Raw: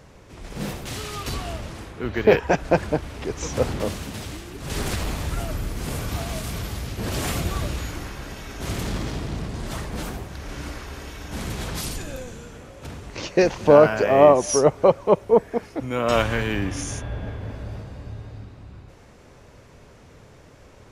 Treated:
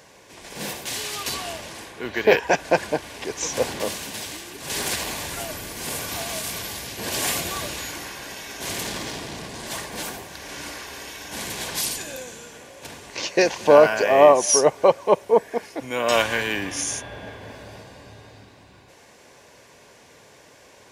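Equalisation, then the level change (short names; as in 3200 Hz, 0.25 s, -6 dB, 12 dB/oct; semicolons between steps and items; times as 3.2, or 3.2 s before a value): HPF 620 Hz 6 dB/oct; Butterworth band-stop 1300 Hz, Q 6.9; high shelf 4400 Hz +5 dB; +3.5 dB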